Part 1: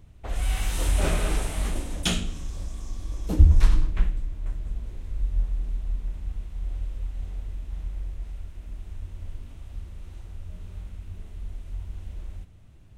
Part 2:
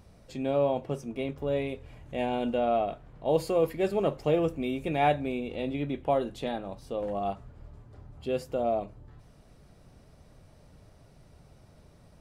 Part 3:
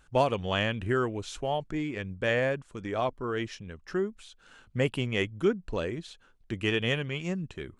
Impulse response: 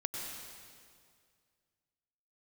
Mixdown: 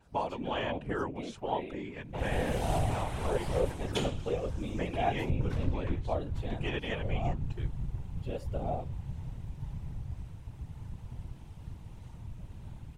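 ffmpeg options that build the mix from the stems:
-filter_complex "[0:a]adelay=1900,volume=0.5dB[link_01];[1:a]aecho=1:1:4.2:0.98,volume=-5.5dB[link_02];[2:a]volume=-1.5dB[link_03];[link_01][link_03]amix=inputs=2:normalize=0,equalizer=frequency=880:width_type=o:width=0.28:gain=12,alimiter=limit=-15dB:level=0:latency=1:release=413,volume=0dB[link_04];[link_02][link_04]amix=inputs=2:normalize=0,afftfilt=real='hypot(re,im)*cos(2*PI*random(0))':imag='hypot(re,im)*sin(2*PI*random(1))':win_size=512:overlap=0.75,adynamicequalizer=threshold=0.00158:dfrequency=4600:dqfactor=0.7:tfrequency=4600:tqfactor=0.7:attack=5:release=100:ratio=0.375:range=3:mode=cutabove:tftype=highshelf"

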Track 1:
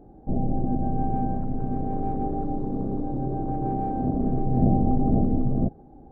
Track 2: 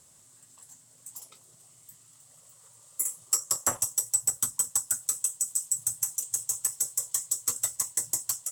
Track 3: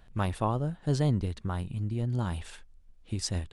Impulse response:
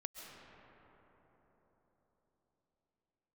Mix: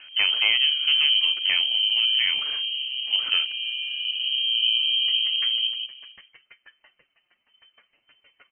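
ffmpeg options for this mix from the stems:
-filter_complex "[0:a]aecho=1:1:7.1:0.38,volume=-6dB,asplit=3[link_01][link_02][link_03];[link_02]volume=-14dB[link_04];[link_03]volume=-4.5dB[link_05];[1:a]flanger=delay=5.6:depth=3.5:regen=26:speed=0.72:shape=sinusoidal,adelay=1750,volume=-1.5dB[link_06];[2:a]equalizer=frequency=710:width_type=o:width=3:gain=11,aphaser=in_gain=1:out_gain=1:delay=1:decay=0.37:speed=0.61:type=sinusoidal,asoftclip=type=tanh:threshold=-19dB,volume=3dB[link_07];[3:a]atrim=start_sample=2205[link_08];[link_04][link_08]afir=irnorm=-1:irlink=0[link_09];[link_05]aecho=0:1:169:1[link_10];[link_01][link_06][link_07][link_09][link_10]amix=inputs=5:normalize=0,lowpass=frequency=2700:width_type=q:width=0.5098,lowpass=frequency=2700:width_type=q:width=0.6013,lowpass=frequency=2700:width_type=q:width=0.9,lowpass=frequency=2700:width_type=q:width=2.563,afreqshift=-3200"

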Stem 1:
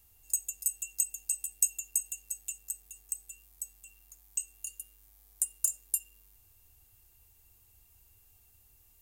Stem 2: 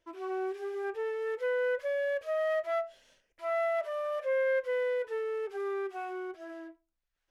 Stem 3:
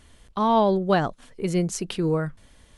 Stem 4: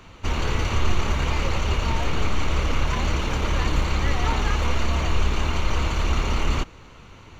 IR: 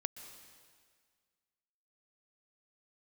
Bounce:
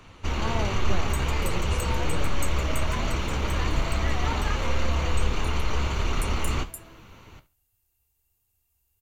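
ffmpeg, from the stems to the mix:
-filter_complex "[0:a]adelay=800,volume=-6dB[link_01];[1:a]adelay=300,volume=-7dB[link_02];[2:a]volume=-9.5dB[link_03];[3:a]volume=1dB,asplit=2[link_04][link_05];[link_05]volume=-18.5dB,aecho=0:1:69|138|207|276:1|0.22|0.0484|0.0106[link_06];[link_01][link_02][link_03][link_04][link_06]amix=inputs=5:normalize=0,flanger=delay=6.6:depth=9.9:regen=-56:speed=1.3:shape=triangular"

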